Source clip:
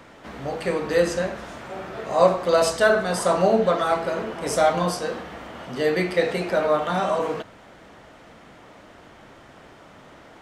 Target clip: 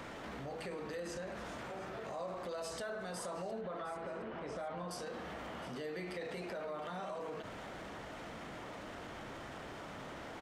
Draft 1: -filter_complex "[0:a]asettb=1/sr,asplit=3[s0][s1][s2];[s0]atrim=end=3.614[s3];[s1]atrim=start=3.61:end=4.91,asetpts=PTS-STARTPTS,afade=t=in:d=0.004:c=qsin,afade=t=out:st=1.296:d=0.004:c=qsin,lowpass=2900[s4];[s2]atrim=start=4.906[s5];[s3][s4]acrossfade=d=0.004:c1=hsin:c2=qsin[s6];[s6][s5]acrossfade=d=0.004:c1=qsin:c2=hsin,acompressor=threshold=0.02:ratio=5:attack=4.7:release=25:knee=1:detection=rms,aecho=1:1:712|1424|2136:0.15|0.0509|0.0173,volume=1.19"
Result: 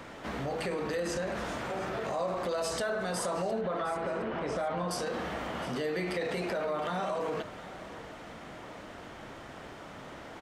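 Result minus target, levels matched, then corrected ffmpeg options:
compression: peak gain reduction -9.5 dB
-filter_complex "[0:a]asettb=1/sr,asplit=3[s0][s1][s2];[s0]atrim=end=3.614[s3];[s1]atrim=start=3.61:end=4.91,asetpts=PTS-STARTPTS,afade=t=in:d=0.004:c=qsin,afade=t=out:st=1.296:d=0.004:c=qsin,lowpass=2900[s4];[s2]atrim=start=4.906[s5];[s3][s4]acrossfade=d=0.004:c1=hsin:c2=qsin[s6];[s6][s5]acrossfade=d=0.004:c1=qsin:c2=hsin,acompressor=threshold=0.00501:ratio=5:attack=4.7:release=25:knee=1:detection=rms,aecho=1:1:712|1424|2136:0.15|0.0509|0.0173,volume=1.19"

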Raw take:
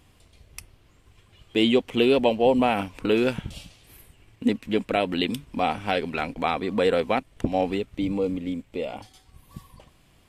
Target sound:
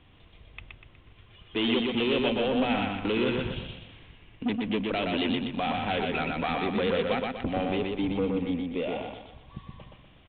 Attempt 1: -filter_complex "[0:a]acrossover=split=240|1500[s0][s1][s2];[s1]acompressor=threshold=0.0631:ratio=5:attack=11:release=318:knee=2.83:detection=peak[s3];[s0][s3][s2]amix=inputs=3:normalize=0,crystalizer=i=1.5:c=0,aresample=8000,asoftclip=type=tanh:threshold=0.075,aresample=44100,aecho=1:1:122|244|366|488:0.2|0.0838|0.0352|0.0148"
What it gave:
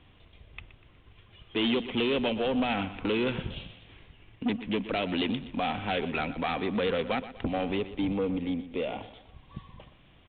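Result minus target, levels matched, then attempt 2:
echo-to-direct -11 dB
-filter_complex "[0:a]acrossover=split=240|1500[s0][s1][s2];[s1]acompressor=threshold=0.0631:ratio=5:attack=11:release=318:knee=2.83:detection=peak[s3];[s0][s3][s2]amix=inputs=3:normalize=0,crystalizer=i=1.5:c=0,aresample=8000,asoftclip=type=tanh:threshold=0.075,aresample=44100,aecho=1:1:122|244|366|488|610:0.708|0.297|0.125|0.0525|0.022"

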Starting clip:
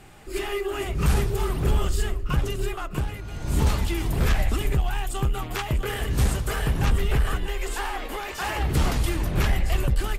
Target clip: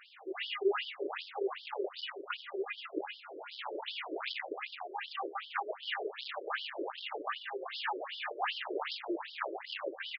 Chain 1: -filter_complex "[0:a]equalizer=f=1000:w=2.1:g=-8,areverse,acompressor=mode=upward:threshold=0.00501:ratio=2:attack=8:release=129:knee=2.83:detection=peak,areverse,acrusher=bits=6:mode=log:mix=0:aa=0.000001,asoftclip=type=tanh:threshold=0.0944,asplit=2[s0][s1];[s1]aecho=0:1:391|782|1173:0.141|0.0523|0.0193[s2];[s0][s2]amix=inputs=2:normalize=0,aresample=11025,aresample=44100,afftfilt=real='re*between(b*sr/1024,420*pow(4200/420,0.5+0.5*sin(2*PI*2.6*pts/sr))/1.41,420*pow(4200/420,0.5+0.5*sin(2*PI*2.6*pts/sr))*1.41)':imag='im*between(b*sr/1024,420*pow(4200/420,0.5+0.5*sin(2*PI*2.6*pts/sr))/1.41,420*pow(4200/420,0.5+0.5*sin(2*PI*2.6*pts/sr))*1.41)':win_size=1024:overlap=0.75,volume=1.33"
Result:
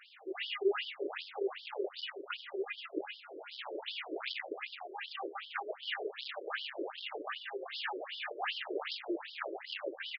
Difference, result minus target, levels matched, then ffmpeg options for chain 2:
1 kHz band -3.0 dB
-filter_complex "[0:a]areverse,acompressor=mode=upward:threshold=0.00501:ratio=2:attack=8:release=129:knee=2.83:detection=peak,areverse,acrusher=bits=6:mode=log:mix=0:aa=0.000001,asoftclip=type=tanh:threshold=0.0944,asplit=2[s0][s1];[s1]aecho=0:1:391|782|1173:0.141|0.0523|0.0193[s2];[s0][s2]amix=inputs=2:normalize=0,aresample=11025,aresample=44100,afftfilt=real='re*between(b*sr/1024,420*pow(4200/420,0.5+0.5*sin(2*PI*2.6*pts/sr))/1.41,420*pow(4200/420,0.5+0.5*sin(2*PI*2.6*pts/sr))*1.41)':imag='im*between(b*sr/1024,420*pow(4200/420,0.5+0.5*sin(2*PI*2.6*pts/sr))/1.41,420*pow(4200/420,0.5+0.5*sin(2*PI*2.6*pts/sr))*1.41)':win_size=1024:overlap=0.75,volume=1.33"

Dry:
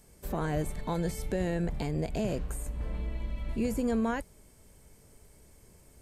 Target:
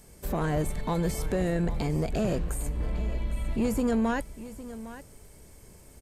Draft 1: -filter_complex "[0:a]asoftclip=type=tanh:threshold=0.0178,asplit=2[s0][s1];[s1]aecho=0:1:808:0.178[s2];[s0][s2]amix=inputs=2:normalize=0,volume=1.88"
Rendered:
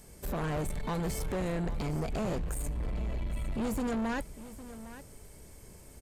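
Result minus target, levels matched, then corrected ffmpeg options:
saturation: distortion +9 dB
-filter_complex "[0:a]asoftclip=type=tanh:threshold=0.0562,asplit=2[s0][s1];[s1]aecho=0:1:808:0.178[s2];[s0][s2]amix=inputs=2:normalize=0,volume=1.88"

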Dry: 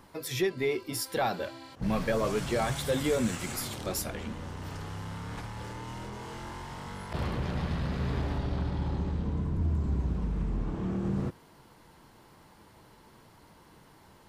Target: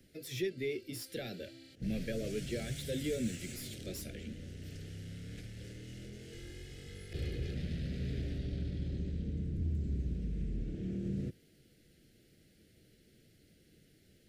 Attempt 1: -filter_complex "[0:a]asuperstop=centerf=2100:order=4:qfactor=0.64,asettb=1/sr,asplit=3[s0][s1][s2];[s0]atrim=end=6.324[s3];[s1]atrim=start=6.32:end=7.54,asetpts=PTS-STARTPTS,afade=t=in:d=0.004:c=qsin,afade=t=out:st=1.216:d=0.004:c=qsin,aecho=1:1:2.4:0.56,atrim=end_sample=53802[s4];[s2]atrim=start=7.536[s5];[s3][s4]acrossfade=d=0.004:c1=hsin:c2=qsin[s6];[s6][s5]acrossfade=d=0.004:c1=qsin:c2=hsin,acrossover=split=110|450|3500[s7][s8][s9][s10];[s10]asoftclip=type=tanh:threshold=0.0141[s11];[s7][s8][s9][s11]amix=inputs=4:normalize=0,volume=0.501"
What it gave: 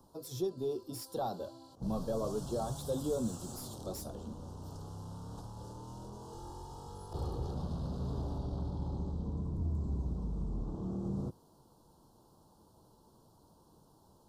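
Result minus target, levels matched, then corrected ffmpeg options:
1 kHz band +17.5 dB
-filter_complex "[0:a]asuperstop=centerf=990:order=4:qfactor=0.64,asettb=1/sr,asplit=3[s0][s1][s2];[s0]atrim=end=6.324[s3];[s1]atrim=start=6.32:end=7.54,asetpts=PTS-STARTPTS,afade=t=in:d=0.004:c=qsin,afade=t=out:st=1.216:d=0.004:c=qsin,aecho=1:1:2.4:0.56,atrim=end_sample=53802[s4];[s2]atrim=start=7.536[s5];[s3][s4]acrossfade=d=0.004:c1=hsin:c2=qsin[s6];[s6][s5]acrossfade=d=0.004:c1=qsin:c2=hsin,acrossover=split=110|450|3500[s7][s8][s9][s10];[s10]asoftclip=type=tanh:threshold=0.0141[s11];[s7][s8][s9][s11]amix=inputs=4:normalize=0,volume=0.501"

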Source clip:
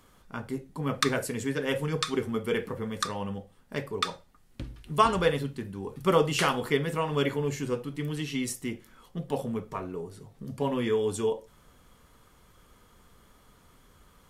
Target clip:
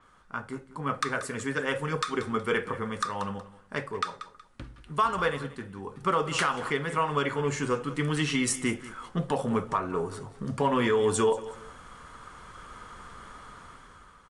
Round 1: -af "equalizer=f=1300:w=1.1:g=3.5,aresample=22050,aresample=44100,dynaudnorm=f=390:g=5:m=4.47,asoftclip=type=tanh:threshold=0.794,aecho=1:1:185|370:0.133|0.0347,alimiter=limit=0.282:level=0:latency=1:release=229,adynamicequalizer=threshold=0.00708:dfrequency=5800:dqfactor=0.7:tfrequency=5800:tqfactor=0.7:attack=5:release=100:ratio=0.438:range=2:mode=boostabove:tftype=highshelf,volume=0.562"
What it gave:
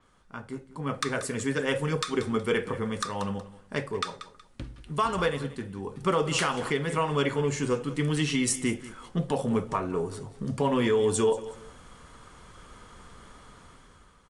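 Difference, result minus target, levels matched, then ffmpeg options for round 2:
1 kHz band -3.0 dB
-af "equalizer=f=1300:w=1.1:g=11.5,aresample=22050,aresample=44100,dynaudnorm=f=390:g=5:m=4.47,asoftclip=type=tanh:threshold=0.794,aecho=1:1:185|370:0.133|0.0347,alimiter=limit=0.282:level=0:latency=1:release=229,adynamicequalizer=threshold=0.00708:dfrequency=5800:dqfactor=0.7:tfrequency=5800:tqfactor=0.7:attack=5:release=100:ratio=0.438:range=2:mode=boostabove:tftype=highshelf,volume=0.562"

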